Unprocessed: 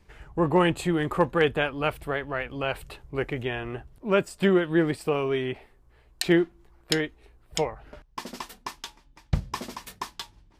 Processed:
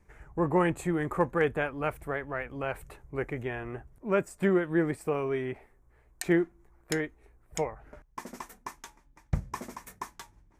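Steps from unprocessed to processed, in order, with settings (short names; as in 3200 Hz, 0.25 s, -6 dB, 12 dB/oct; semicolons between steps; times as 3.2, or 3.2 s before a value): band shelf 3700 Hz -11 dB 1.1 oct; gain -4 dB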